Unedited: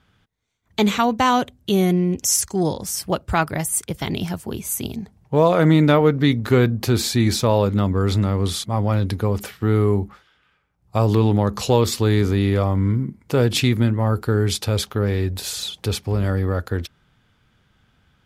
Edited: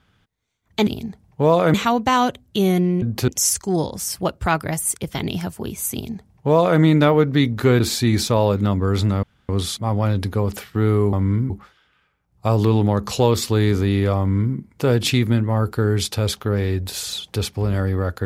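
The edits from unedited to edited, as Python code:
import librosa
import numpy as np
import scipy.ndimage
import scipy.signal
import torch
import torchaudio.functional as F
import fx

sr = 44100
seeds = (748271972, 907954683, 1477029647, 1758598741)

y = fx.edit(x, sr, fx.duplicate(start_s=4.8, length_s=0.87, to_s=0.87),
    fx.move(start_s=6.67, length_s=0.26, to_s=2.15),
    fx.insert_room_tone(at_s=8.36, length_s=0.26),
    fx.duplicate(start_s=12.69, length_s=0.37, to_s=10.0), tone=tone)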